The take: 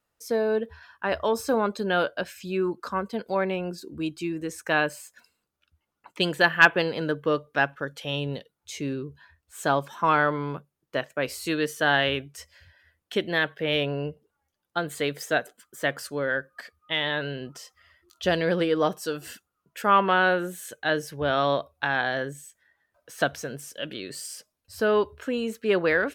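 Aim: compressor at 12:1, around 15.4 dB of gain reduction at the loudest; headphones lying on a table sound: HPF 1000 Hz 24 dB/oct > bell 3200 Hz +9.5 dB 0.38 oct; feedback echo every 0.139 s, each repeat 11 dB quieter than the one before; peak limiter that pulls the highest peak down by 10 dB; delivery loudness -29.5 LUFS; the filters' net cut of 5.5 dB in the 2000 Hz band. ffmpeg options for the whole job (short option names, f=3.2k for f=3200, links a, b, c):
-af "equalizer=f=2k:t=o:g=-8.5,acompressor=threshold=-31dB:ratio=12,alimiter=level_in=2.5dB:limit=-24dB:level=0:latency=1,volume=-2.5dB,highpass=f=1k:w=0.5412,highpass=f=1k:w=1.3066,equalizer=f=3.2k:t=o:w=0.38:g=9.5,aecho=1:1:139|278|417:0.282|0.0789|0.0221,volume=11.5dB"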